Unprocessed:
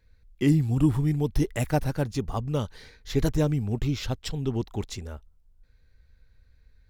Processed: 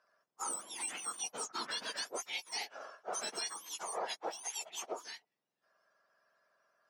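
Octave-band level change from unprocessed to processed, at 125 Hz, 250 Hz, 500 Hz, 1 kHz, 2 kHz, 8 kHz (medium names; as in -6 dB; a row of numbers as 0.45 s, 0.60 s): under -40 dB, -30.0 dB, -14.5 dB, -4.0 dB, -3.5 dB, +5.5 dB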